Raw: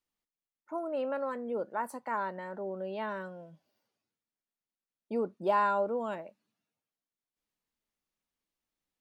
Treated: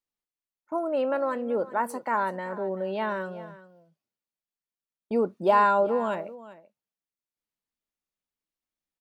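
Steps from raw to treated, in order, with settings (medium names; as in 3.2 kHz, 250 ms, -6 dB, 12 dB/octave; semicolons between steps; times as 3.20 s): gate -52 dBFS, range -12 dB; on a send: delay 385 ms -17 dB; on the sum: trim +7 dB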